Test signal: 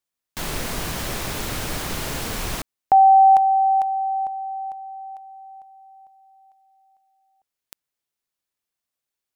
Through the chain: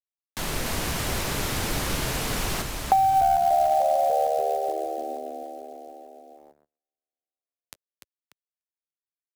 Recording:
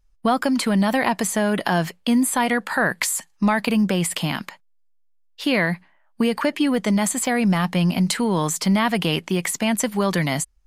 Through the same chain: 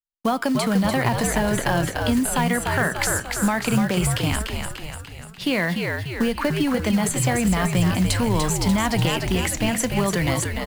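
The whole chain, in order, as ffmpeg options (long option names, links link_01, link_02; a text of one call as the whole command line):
ffmpeg -i in.wav -filter_complex "[0:a]asplit=2[link_01][link_02];[link_02]asplit=7[link_03][link_04][link_05][link_06][link_07][link_08][link_09];[link_03]adelay=294,afreqshift=-74,volume=-5dB[link_10];[link_04]adelay=588,afreqshift=-148,volume=-10dB[link_11];[link_05]adelay=882,afreqshift=-222,volume=-15.1dB[link_12];[link_06]adelay=1176,afreqshift=-296,volume=-20.1dB[link_13];[link_07]adelay=1470,afreqshift=-370,volume=-25.1dB[link_14];[link_08]adelay=1764,afreqshift=-444,volume=-30.2dB[link_15];[link_09]adelay=2058,afreqshift=-518,volume=-35.2dB[link_16];[link_10][link_11][link_12][link_13][link_14][link_15][link_16]amix=inputs=7:normalize=0[link_17];[link_01][link_17]amix=inputs=2:normalize=0,aresample=32000,aresample=44100,asplit=2[link_18][link_19];[link_19]aeval=exprs='clip(val(0),-1,0.299)':channel_layout=same,volume=-6.5dB[link_20];[link_18][link_20]amix=inputs=2:normalize=0,flanger=delay=6.5:depth=4.7:regen=-88:speed=0.46:shape=sinusoidal,agate=range=-42dB:threshold=-50dB:ratio=16:release=39:detection=rms,acrusher=bits=5:mode=log:mix=0:aa=0.000001,acrossover=split=150[link_21][link_22];[link_22]acompressor=threshold=-19dB:ratio=6:attack=38:release=293:knee=2.83:detection=peak[link_23];[link_21][link_23]amix=inputs=2:normalize=0" out.wav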